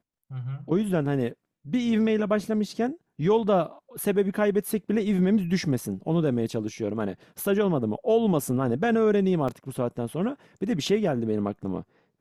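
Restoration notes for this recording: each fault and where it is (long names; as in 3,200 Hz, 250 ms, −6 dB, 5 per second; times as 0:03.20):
0:09.48: drop-out 4.9 ms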